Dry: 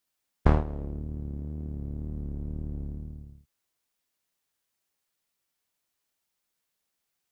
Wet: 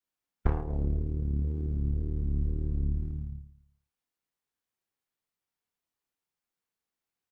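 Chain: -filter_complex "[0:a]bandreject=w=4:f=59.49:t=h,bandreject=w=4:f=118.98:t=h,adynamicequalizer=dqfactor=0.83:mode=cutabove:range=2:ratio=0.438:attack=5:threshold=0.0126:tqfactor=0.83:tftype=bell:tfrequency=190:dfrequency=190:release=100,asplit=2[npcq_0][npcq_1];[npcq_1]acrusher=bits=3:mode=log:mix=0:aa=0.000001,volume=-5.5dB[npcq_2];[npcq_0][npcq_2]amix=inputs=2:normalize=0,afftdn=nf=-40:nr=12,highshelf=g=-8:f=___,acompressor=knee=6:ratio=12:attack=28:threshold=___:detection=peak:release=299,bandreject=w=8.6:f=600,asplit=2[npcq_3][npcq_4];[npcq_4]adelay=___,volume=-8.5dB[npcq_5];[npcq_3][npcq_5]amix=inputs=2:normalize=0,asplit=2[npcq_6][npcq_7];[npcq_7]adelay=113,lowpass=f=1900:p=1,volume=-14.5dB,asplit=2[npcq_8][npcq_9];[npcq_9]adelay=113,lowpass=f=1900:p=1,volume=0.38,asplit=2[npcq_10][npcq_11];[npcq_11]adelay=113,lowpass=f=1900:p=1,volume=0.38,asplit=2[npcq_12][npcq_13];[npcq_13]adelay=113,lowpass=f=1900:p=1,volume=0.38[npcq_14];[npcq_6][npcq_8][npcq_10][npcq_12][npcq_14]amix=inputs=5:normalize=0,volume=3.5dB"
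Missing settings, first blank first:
2400, -30dB, 29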